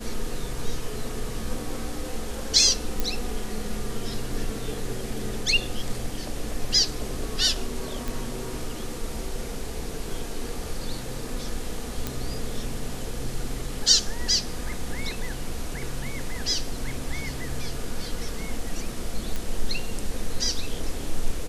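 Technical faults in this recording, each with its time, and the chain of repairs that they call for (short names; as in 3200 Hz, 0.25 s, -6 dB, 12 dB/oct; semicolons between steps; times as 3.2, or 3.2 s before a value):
3 pop
8.08 pop
12.07 pop
19.36 pop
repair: de-click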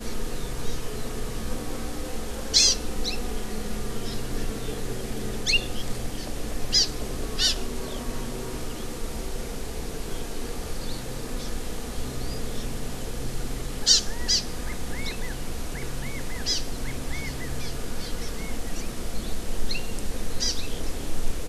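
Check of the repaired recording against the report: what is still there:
none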